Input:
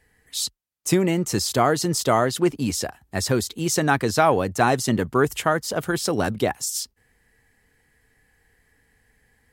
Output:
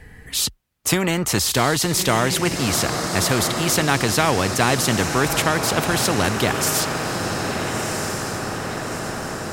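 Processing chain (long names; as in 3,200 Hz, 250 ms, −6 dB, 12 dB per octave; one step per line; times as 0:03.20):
bass and treble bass +8 dB, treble −7 dB
feedback delay with all-pass diffusion 1,317 ms, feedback 54%, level −11 dB
every bin compressed towards the loudest bin 2 to 1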